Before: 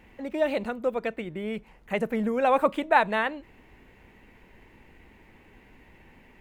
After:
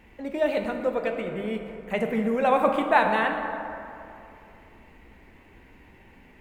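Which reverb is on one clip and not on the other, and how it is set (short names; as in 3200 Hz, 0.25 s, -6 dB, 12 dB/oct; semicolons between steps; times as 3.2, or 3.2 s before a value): plate-style reverb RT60 2.8 s, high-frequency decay 0.45×, DRR 3.5 dB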